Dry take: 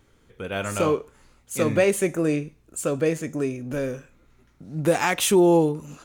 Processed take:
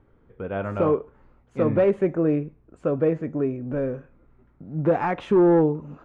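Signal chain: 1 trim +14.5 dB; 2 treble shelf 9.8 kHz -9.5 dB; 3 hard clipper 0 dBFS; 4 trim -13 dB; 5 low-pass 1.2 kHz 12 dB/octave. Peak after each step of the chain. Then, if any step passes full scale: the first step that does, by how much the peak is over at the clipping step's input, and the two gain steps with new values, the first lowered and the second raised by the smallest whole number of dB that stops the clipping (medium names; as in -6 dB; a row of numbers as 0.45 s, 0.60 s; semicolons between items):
+5.5 dBFS, +5.5 dBFS, 0.0 dBFS, -13.0 dBFS, -12.5 dBFS; step 1, 5.5 dB; step 1 +8.5 dB, step 4 -7 dB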